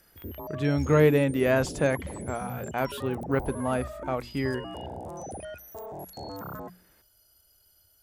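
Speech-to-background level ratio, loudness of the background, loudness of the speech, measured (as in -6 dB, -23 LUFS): 12.5 dB, -39.5 LUFS, -27.0 LUFS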